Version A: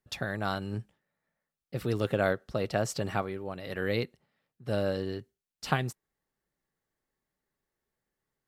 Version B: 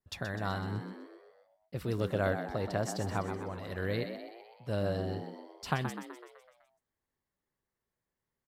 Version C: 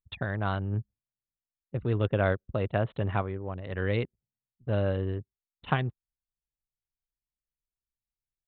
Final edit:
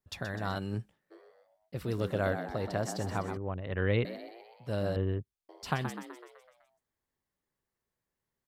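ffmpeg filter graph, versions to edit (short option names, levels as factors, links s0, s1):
-filter_complex "[2:a]asplit=2[s0][s1];[1:a]asplit=4[s2][s3][s4][s5];[s2]atrim=end=0.57[s6];[0:a]atrim=start=0.55:end=1.12[s7];[s3]atrim=start=1.1:end=3.372[s8];[s0]atrim=start=3.368:end=4.052[s9];[s4]atrim=start=4.048:end=4.962[s10];[s1]atrim=start=4.958:end=5.492[s11];[s5]atrim=start=5.488[s12];[s6][s7]acrossfade=d=0.02:c1=tri:c2=tri[s13];[s13][s8]acrossfade=d=0.02:c1=tri:c2=tri[s14];[s14][s9]acrossfade=d=0.004:c1=hsin:c2=hsin[s15];[s15][s10]acrossfade=d=0.004:c1=hsin:c2=hsin[s16];[s16][s11]acrossfade=d=0.004:c1=hsin:c2=hsin[s17];[s17][s12]acrossfade=d=0.004:c1=hsin:c2=hsin"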